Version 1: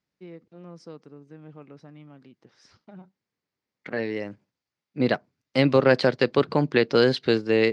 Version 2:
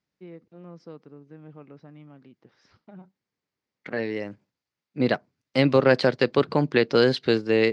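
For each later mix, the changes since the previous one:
first voice: add distance through air 160 m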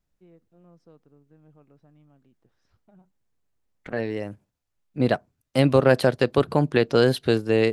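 first voice -11.5 dB; master: remove cabinet simulation 150–6200 Hz, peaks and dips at 680 Hz -4 dB, 2.1 kHz +5 dB, 4.7 kHz +5 dB

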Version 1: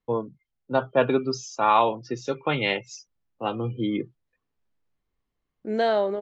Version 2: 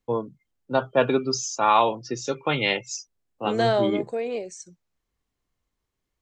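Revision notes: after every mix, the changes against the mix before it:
second voice: entry -2.20 s; master: remove distance through air 140 m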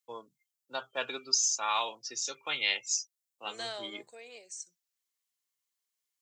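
first voice +4.5 dB; master: add differentiator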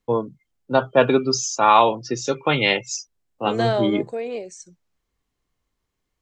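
master: remove differentiator

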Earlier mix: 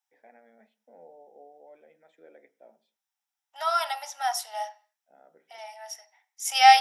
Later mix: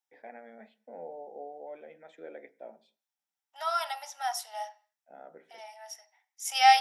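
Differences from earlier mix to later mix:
first voice +8.5 dB; second voice -4.5 dB

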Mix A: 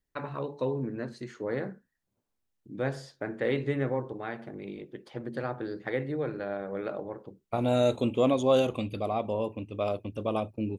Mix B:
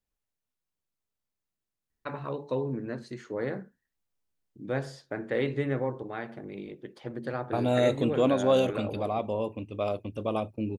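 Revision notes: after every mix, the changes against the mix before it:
first voice: entry +1.90 s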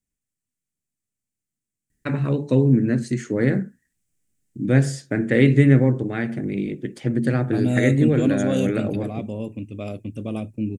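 first voice +10.5 dB; master: add graphic EQ 125/250/500/1000/2000/4000/8000 Hz +7/+7/-3/-12/+5/-6/+12 dB

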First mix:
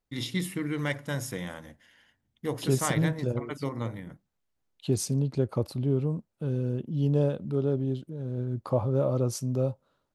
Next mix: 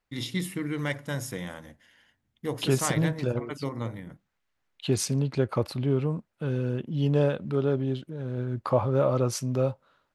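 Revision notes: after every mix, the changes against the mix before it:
second voice: add peaking EQ 1.9 kHz +12 dB 2.3 oct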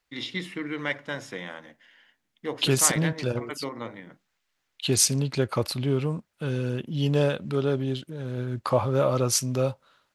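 first voice: add band-pass 240–2700 Hz; master: add treble shelf 2.2 kHz +11.5 dB

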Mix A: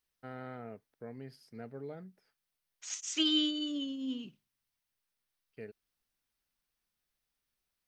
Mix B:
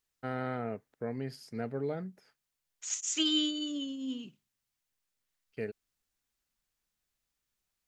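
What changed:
first voice +9.0 dB; master: add peaking EQ 7.1 kHz +9.5 dB 0.25 oct

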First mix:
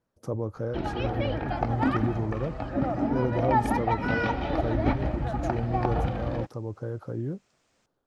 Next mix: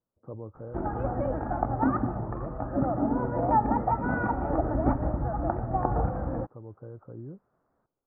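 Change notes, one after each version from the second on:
speech -9.5 dB; first sound: remove distance through air 230 m; master: add steep low-pass 1.4 kHz 36 dB/octave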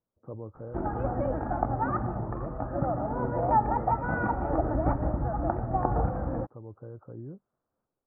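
second sound -11.5 dB

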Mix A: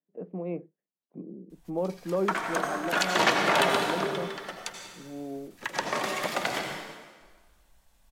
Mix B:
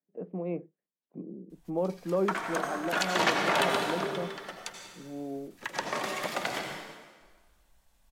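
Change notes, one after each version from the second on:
background -3.0 dB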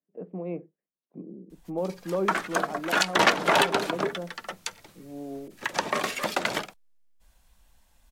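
background +9.5 dB; reverb: off

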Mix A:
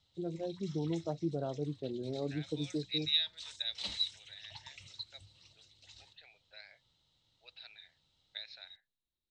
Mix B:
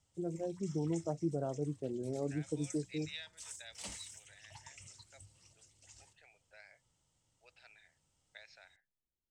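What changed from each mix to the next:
master: remove resonant low-pass 3.9 kHz, resonance Q 9.5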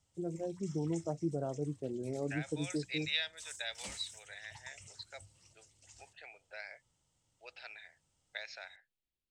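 second voice +11.5 dB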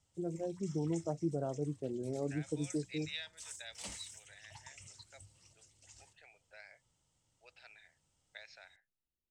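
second voice -8.5 dB

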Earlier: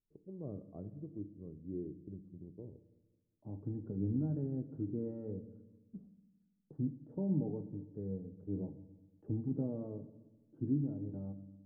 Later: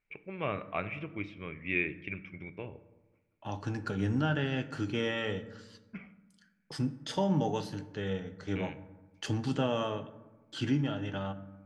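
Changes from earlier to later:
first voice: add resonant low-pass 2.3 kHz, resonance Q 13; master: remove four-pole ladder low-pass 480 Hz, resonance 20%

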